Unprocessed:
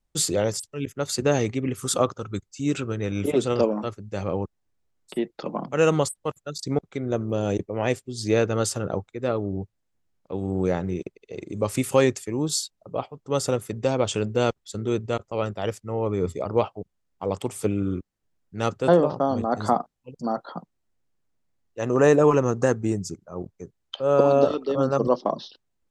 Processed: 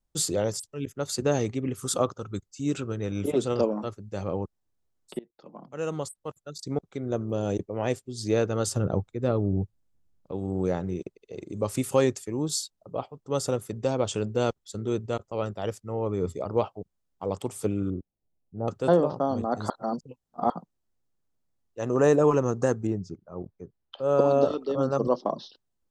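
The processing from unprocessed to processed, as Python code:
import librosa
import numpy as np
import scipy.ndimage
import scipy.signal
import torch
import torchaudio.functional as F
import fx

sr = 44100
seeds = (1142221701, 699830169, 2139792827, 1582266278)

y = fx.low_shelf(x, sr, hz=240.0, db=10.0, at=(8.67, 10.32))
y = fx.cheby1_lowpass(y, sr, hz=770.0, order=3, at=(17.9, 18.68))
y = fx.air_absorb(y, sr, metres=220.0, at=(22.87, 23.99))
y = fx.edit(y, sr, fx.fade_in_from(start_s=5.19, length_s=1.95, floor_db=-23.5),
    fx.reverse_span(start_s=19.7, length_s=0.8), tone=tone)
y = fx.peak_eq(y, sr, hz=2200.0, db=-5.0, octaves=1.0)
y = F.gain(torch.from_numpy(y), -3.0).numpy()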